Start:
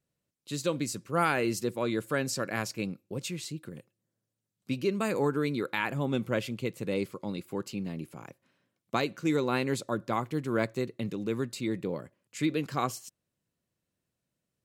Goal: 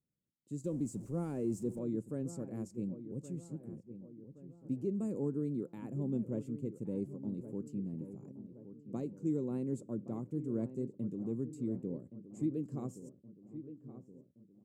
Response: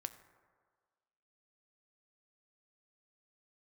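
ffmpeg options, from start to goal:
-filter_complex "[0:a]asettb=1/sr,asplit=3[a][b][c];[a]atrim=end=0.644[d];[b]atrim=start=0.64:end=1.79,asetpts=PTS-STARTPTS,afade=t=in:d=0.004:c=qsin,afade=t=out:st=1.146:d=0.004:c=qsin,aeval=exprs='val(0)+0.5*0.0168*sgn(val(0))':c=same[e];[c]atrim=start=1.786[f];[d][e]acrossfade=d=0.004:c1=hsin:c2=qsin[g];[g][f]acrossfade=d=0.004:c1=qsin:c2=hsin,firequalizer=gain_entry='entry(100,0);entry(220,4);entry(720,-13);entry(1500,-26);entry(4000,-29);entry(7400,-8);entry(14000,-22)':delay=0.05:min_phase=1,asplit=2[h][i];[i]adelay=1121,lowpass=f=1.3k:p=1,volume=-12dB,asplit=2[j][k];[k]adelay=1121,lowpass=f=1.3k:p=1,volume=0.52,asplit=2[l][m];[m]adelay=1121,lowpass=f=1.3k:p=1,volume=0.52,asplit=2[n][o];[o]adelay=1121,lowpass=f=1.3k:p=1,volume=0.52,asplit=2[p][q];[q]adelay=1121,lowpass=f=1.3k:p=1,volume=0.52[r];[j][l][n][p][r]amix=inputs=5:normalize=0[s];[h][s]amix=inputs=2:normalize=0,volume=-6.5dB"

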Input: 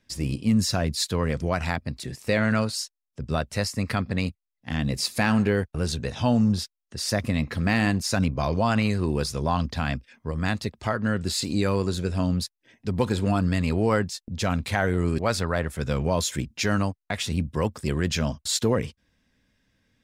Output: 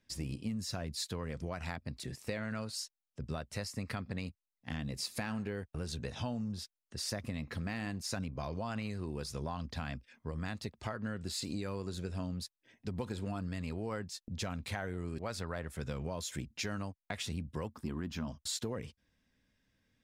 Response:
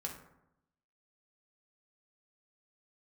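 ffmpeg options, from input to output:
-filter_complex "[0:a]asettb=1/sr,asplit=3[a][b][c];[a]atrim=end=17.694[d];[b]atrim=start=17.69:end=18.28,asetpts=PTS-STARTPTS,afade=t=in:d=0.004:c=qsin,afade=t=out:st=0.586:d=0.004:c=qsin,equalizer=f=125:t=o:w=1:g=-6,equalizer=f=250:t=o:w=1:g=9,equalizer=f=500:t=o:w=1:g=-9,equalizer=f=1k:t=o:w=1:g=7,equalizer=f=2k:t=o:w=1:g=-6,equalizer=f=4k:t=o:w=1:g=-3,equalizer=f=8k:t=o:w=1:g=-11[e];[c]atrim=start=18.276[f];[d][e]acrossfade=d=0.004:c1=hsin:c2=qsin[g];[g][f]acrossfade=d=0.004:c1=qsin:c2=hsin,acompressor=threshold=-27dB:ratio=6,volume=-7.5dB"

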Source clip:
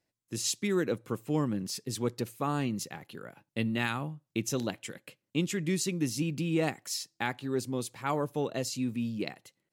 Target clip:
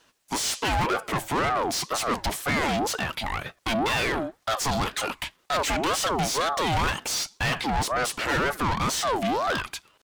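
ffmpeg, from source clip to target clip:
-filter_complex "[0:a]atempo=0.97,asplit=2[a][b];[b]highpass=f=720:p=1,volume=34dB,asoftclip=type=tanh:threshold=-14.5dB[c];[a][c]amix=inputs=2:normalize=0,lowpass=f=4.8k:p=1,volume=-6dB,aeval=exprs='val(0)*sin(2*PI*720*n/s+720*0.4/2*sin(2*PI*2*n/s))':c=same"

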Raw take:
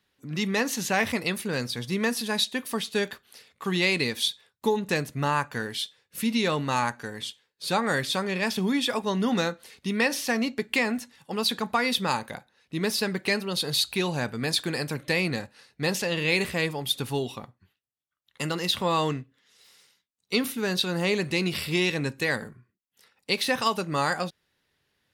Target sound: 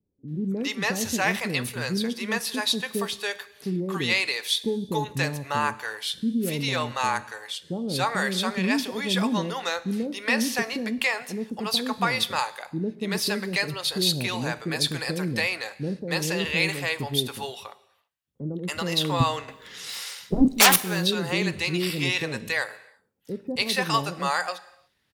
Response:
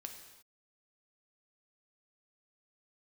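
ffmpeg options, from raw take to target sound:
-filter_complex "[0:a]asettb=1/sr,asplit=3[a][b][c];[a]atrim=end=19.204[d];[b]atrim=start=19.2:end=20.48,asetpts=PTS-STARTPTS,afade=t=in:d=0.004:c=qsin,afade=t=out:st=1.276:d=0.004:c=qsin,aeval=exprs='0.282*sin(PI/2*7.08*val(0)/0.282)':c=same[e];[c]atrim=start=20.476[f];[d][e]acrossfade=d=0.004:c1=hsin:c2=qsin[g];[g][f]acrossfade=d=0.004:c1=qsin:c2=hsin,acrossover=split=480[h][i];[i]adelay=280[j];[h][j]amix=inputs=2:normalize=0,asplit=2[k][l];[1:a]atrim=start_sample=2205[m];[l][m]afir=irnorm=-1:irlink=0,volume=-5dB[n];[k][n]amix=inputs=2:normalize=0,volume=-1dB"

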